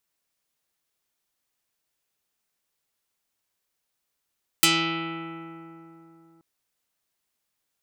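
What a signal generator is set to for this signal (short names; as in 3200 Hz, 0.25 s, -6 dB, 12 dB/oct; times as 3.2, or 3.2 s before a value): plucked string E3, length 1.78 s, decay 3.46 s, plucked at 0.3, dark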